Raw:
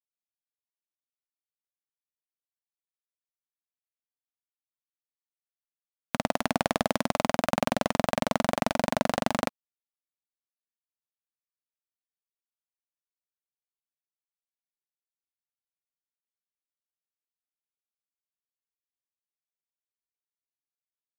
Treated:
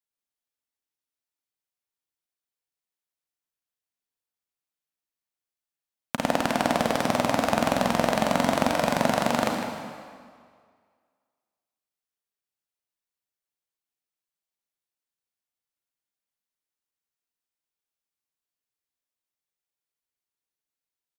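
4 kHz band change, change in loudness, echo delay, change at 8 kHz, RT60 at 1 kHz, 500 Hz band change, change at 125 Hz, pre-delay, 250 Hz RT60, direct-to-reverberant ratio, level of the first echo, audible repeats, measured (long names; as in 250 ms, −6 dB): +3.5 dB, +3.5 dB, 155 ms, +3.5 dB, 2.0 s, +4.0 dB, +3.0 dB, 33 ms, 1.8 s, 1.0 dB, −11.0 dB, 1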